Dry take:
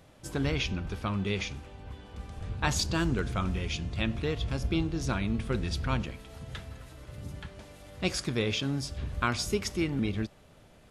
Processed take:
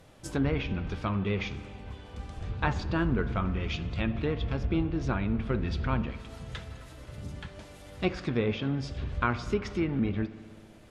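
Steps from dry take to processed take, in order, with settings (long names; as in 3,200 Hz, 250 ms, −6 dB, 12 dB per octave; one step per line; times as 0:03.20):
flanger 0.76 Hz, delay 1.9 ms, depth 3 ms, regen +82%
treble cut that deepens with the level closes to 1,900 Hz, closed at −30.5 dBFS
spring reverb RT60 2.1 s, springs 58 ms, chirp 25 ms, DRR 15 dB
level +6 dB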